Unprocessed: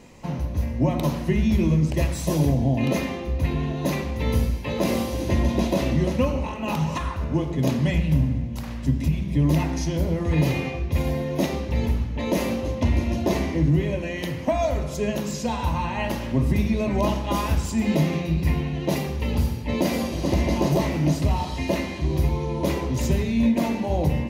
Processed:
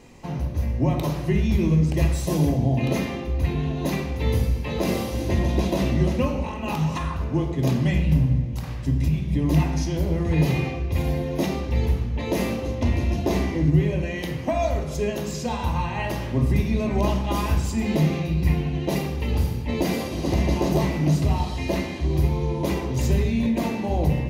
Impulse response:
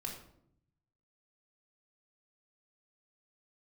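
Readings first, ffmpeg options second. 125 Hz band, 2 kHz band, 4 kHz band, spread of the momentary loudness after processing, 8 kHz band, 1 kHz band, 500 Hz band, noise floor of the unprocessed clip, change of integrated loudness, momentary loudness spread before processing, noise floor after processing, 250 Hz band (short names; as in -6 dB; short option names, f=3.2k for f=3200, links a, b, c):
+1.0 dB, -0.5 dB, -0.5 dB, 6 LU, -1.0 dB, -0.5 dB, -0.5 dB, -31 dBFS, 0.0 dB, 5 LU, -30 dBFS, -0.5 dB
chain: -filter_complex "[0:a]asplit=2[a][b];[1:a]atrim=start_sample=2205[c];[b][c]afir=irnorm=-1:irlink=0,volume=-0.5dB[d];[a][d]amix=inputs=2:normalize=0,volume=-5dB"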